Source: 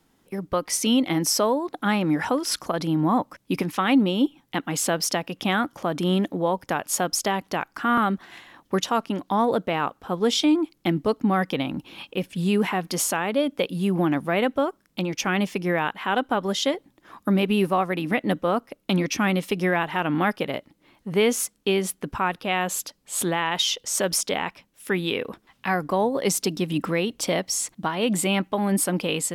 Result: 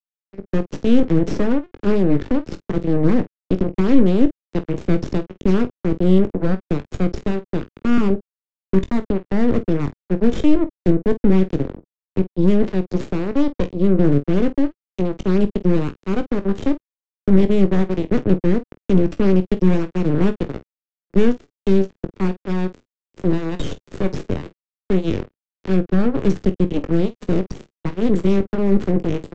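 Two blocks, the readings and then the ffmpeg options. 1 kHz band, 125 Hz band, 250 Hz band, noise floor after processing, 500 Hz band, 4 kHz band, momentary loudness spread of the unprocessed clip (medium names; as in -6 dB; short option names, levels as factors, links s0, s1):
-8.0 dB, +9.0 dB, +7.0 dB, under -85 dBFS, +4.0 dB, -11.5 dB, 7 LU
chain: -filter_complex "[0:a]aeval=exprs='0.335*(cos(1*acos(clip(val(0)/0.335,-1,1)))-cos(1*PI/2))+0.00422*(cos(3*acos(clip(val(0)/0.335,-1,1)))-cos(3*PI/2))+0.168*(cos(4*acos(clip(val(0)/0.335,-1,1)))-cos(4*PI/2))+0.0133*(cos(6*acos(clip(val(0)/0.335,-1,1)))-cos(6*PI/2))':c=same,adynamicequalizer=threshold=0.00891:dfrequency=170:dqfactor=3.6:tfrequency=170:tqfactor=3.6:attack=5:release=100:ratio=0.375:range=4:mode=boostabove:tftype=bell,aresample=16000,acrusher=bits=2:mix=0:aa=0.5,aresample=44100,lowpass=f=1300:p=1,aecho=1:1:21|49:0.282|0.15,acrossover=split=180|920[s0][s1][s2];[s1]asoftclip=type=tanh:threshold=0.15[s3];[s0][s3][s2]amix=inputs=3:normalize=0,lowshelf=f=560:t=q:w=1.5:g=10,volume=0.501"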